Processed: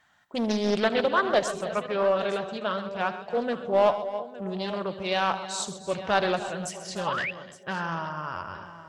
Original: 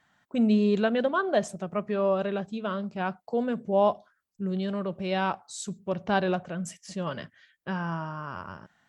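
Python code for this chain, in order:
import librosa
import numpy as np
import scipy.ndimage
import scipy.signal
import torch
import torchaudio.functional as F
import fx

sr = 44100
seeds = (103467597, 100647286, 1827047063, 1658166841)

p1 = np.clip(10.0 ** (18.5 / 20.0) * x, -1.0, 1.0) / 10.0 ** (18.5 / 20.0)
p2 = x + F.gain(torch.from_numpy(p1), -5.0).numpy()
p3 = fx.peak_eq(p2, sr, hz=200.0, db=-8.5, octaves=2.0)
p4 = p3 + fx.echo_banded(p3, sr, ms=325, feedback_pct=49, hz=480.0, wet_db=-14.0, dry=0)
p5 = fx.dynamic_eq(p4, sr, hz=4100.0, q=1.3, threshold_db=-47.0, ratio=4.0, max_db=5)
p6 = fx.echo_multitap(p5, sr, ms=(78, 130, 296, 862), db=(-15.5, -13.5, -15.0, -16.0))
p7 = fx.spec_paint(p6, sr, seeds[0], shape='rise', start_s=7.06, length_s=0.25, low_hz=780.0, high_hz=2800.0, level_db=-30.0)
y = fx.doppler_dist(p7, sr, depth_ms=0.42)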